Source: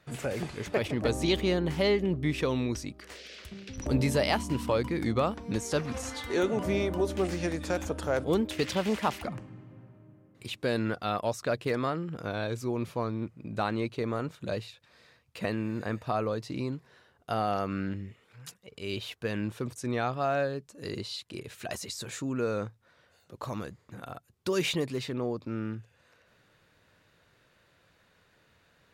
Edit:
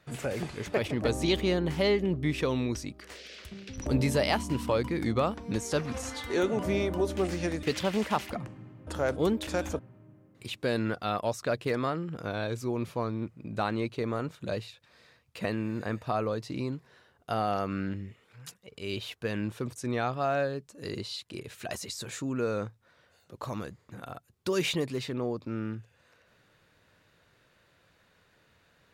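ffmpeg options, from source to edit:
-filter_complex "[0:a]asplit=5[a][b][c][d][e];[a]atrim=end=7.632[f];[b]atrim=start=8.548:end=9.792[g];[c]atrim=start=7.948:end=8.552[h];[d]atrim=start=7.628:end=7.952[i];[e]atrim=start=9.788[j];[f][g]acrossfade=d=0.004:c1=hsin:c2=hsin[k];[k][h]acrossfade=d=0.004:c1=hsin:c2=hsin[l];[l][i]acrossfade=d=0.004:c1=hsin:c2=hsin[m];[m][j]acrossfade=d=0.004:c1=hsin:c2=hsin"

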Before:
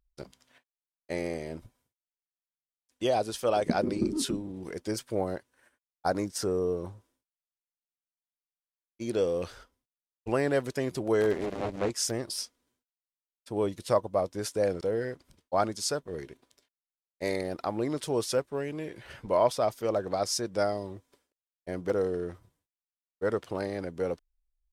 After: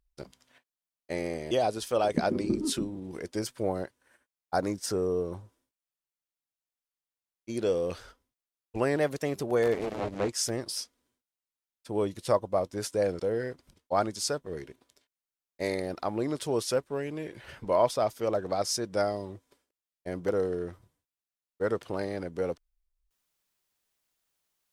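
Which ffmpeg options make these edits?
-filter_complex "[0:a]asplit=4[a][b][c][d];[a]atrim=end=1.512[e];[b]atrim=start=3.028:end=10.484[f];[c]atrim=start=10.48:end=11.61,asetpts=PTS-STARTPTS,asetrate=48069,aresample=44100,atrim=end_sample=45718,asetpts=PTS-STARTPTS[g];[d]atrim=start=11.606[h];[e][f]acrossfade=d=0.004:c1=hsin:c2=hsin[i];[i][g]acrossfade=d=0.004:c1=hsin:c2=hsin[j];[j][h]acrossfade=d=0.004:c1=hsin:c2=hsin"

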